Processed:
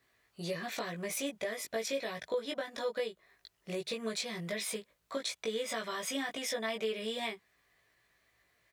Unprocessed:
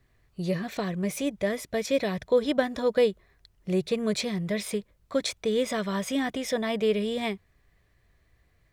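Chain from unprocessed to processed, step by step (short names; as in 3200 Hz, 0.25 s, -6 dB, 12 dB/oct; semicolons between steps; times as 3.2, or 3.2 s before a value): HPF 840 Hz 6 dB/oct; compressor 6:1, threshold -35 dBFS, peak gain reduction 12 dB; doubler 18 ms -2 dB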